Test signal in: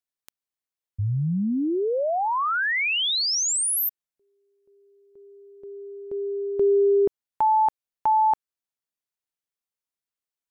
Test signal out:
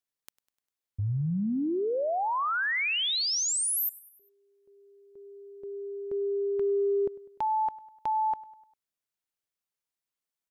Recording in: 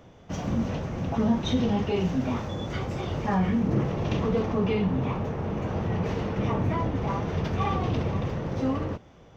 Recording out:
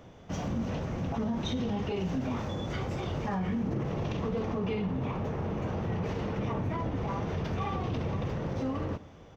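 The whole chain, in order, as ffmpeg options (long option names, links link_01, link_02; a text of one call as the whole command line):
ffmpeg -i in.wav -af "acompressor=threshold=-26dB:ratio=6:attack=0.43:release=161:knee=6:detection=peak,aecho=1:1:100|200|300|400:0.0891|0.0481|0.026|0.014" out.wav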